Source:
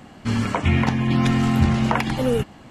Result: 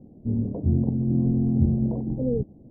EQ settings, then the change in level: inverse Chebyshev low-pass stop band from 1300 Hz, stop band 50 dB; air absorption 290 m; -2.5 dB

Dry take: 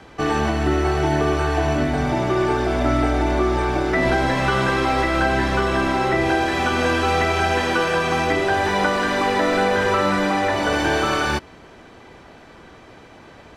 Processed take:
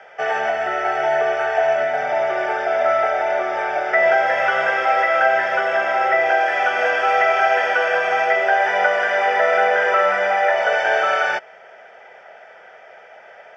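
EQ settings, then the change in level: speaker cabinet 460–5700 Hz, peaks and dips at 660 Hz +4 dB, 1300 Hz +9 dB, 1900 Hz +4 dB, 3500 Hz +8 dB, 5200 Hz +5 dB; bell 680 Hz +4.5 dB 1.6 oct; fixed phaser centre 1100 Hz, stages 6; 0.0 dB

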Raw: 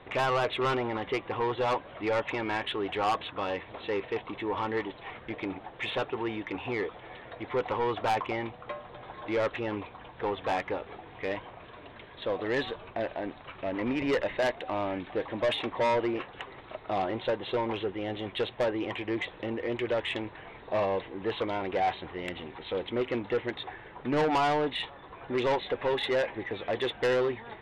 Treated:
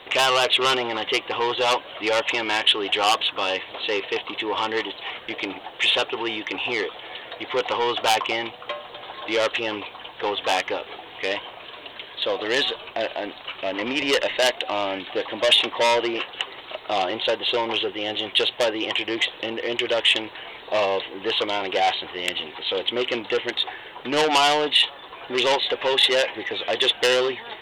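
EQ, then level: tone controls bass -13 dB, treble +15 dB; bell 3000 Hz +9 dB 0.48 oct; +6.5 dB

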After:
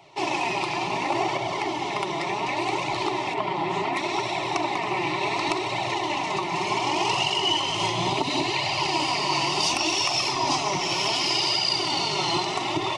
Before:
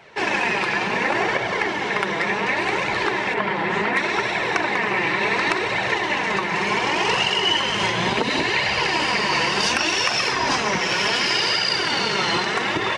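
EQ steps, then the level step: fixed phaser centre 320 Hz, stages 8; 0.0 dB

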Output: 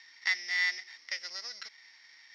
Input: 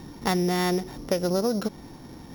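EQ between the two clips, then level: resonant high-pass 2000 Hz, resonance Q 9.3; ladder low-pass 5600 Hz, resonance 60%; 0.0 dB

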